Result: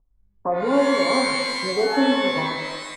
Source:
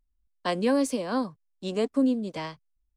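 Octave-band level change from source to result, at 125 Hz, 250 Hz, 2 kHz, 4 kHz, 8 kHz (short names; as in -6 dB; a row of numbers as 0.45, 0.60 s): +2.5, +3.0, +15.0, +14.0, +6.5 dB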